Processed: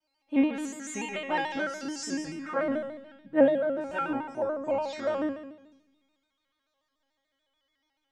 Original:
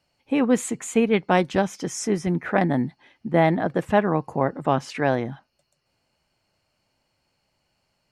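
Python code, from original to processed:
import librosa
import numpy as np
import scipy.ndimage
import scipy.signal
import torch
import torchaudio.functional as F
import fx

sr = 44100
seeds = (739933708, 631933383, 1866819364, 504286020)

p1 = fx.pitch_glide(x, sr, semitones=-5.5, runs='starting unshifted')
p2 = fx.high_shelf(p1, sr, hz=9000.0, db=-12.0)
p3 = fx.hum_notches(p2, sr, base_hz=60, count=3)
p4 = fx.comb_fb(p3, sr, f0_hz=290.0, decay_s=0.73, harmonics='all', damping=0.0, mix_pct=100)
p5 = fx.echo_feedback(p4, sr, ms=126, feedback_pct=50, wet_db=-19.0)
p6 = fx.rev_spring(p5, sr, rt60_s=1.3, pass_ms=(42,), chirp_ms=30, drr_db=13.5)
p7 = fx.rider(p6, sr, range_db=5, speed_s=0.5)
p8 = p6 + (p7 * 10.0 ** (2.0 / 20.0))
p9 = fx.low_shelf(p8, sr, hz=320.0, db=-3.5)
p10 = fx.vibrato_shape(p9, sr, shape='square', rate_hz=6.9, depth_cents=100.0)
y = p10 * 10.0 ** (6.5 / 20.0)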